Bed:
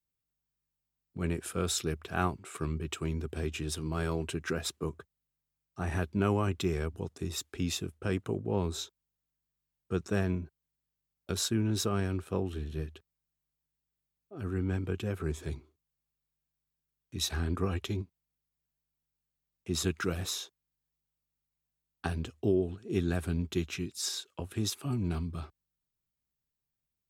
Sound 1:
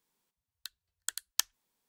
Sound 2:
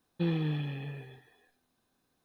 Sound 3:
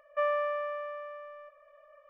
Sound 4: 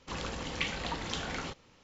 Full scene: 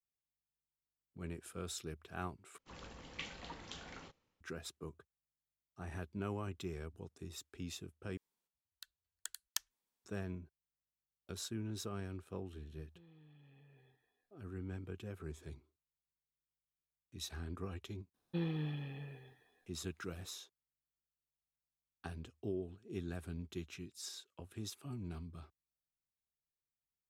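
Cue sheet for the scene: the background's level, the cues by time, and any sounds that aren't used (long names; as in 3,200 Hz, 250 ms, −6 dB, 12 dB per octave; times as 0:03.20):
bed −12.5 dB
0:02.58: overwrite with 4 −14 dB + multiband upward and downward expander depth 70%
0:08.17: overwrite with 1 −10 dB
0:12.76: mix in 2 −18 dB + downward compressor 8 to 1, threshold −42 dBFS
0:18.14: mix in 2 −7.5 dB
not used: 3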